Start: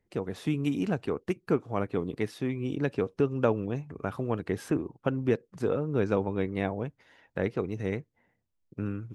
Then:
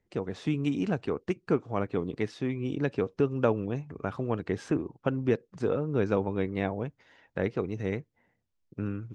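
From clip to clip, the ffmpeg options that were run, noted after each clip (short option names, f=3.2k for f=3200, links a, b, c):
-af "lowpass=f=7.5k:w=0.5412,lowpass=f=7.5k:w=1.3066"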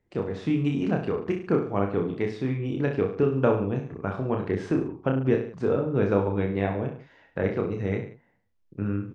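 -af "highshelf=f=4.7k:g=-11,aecho=1:1:30|63|99.3|139.2|183.2:0.631|0.398|0.251|0.158|0.1,volume=2dB"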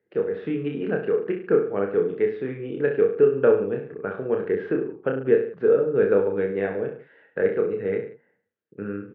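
-af "highpass=210,equalizer=f=270:t=q:w=4:g=-4,equalizer=f=450:t=q:w=4:g=10,equalizer=f=710:t=q:w=4:g=-5,equalizer=f=1k:t=q:w=4:g=-9,equalizer=f=1.6k:t=q:w=4:g=7,equalizer=f=2.3k:t=q:w=4:g=-3,lowpass=f=2.9k:w=0.5412,lowpass=f=2.9k:w=1.3066"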